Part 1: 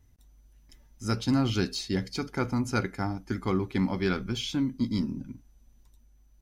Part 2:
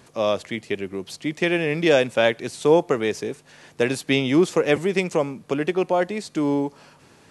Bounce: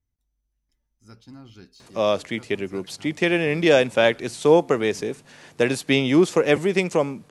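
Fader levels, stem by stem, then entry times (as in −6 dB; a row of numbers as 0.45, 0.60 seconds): −19.0, +1.0 decibels; 0.00, 1.80 seconds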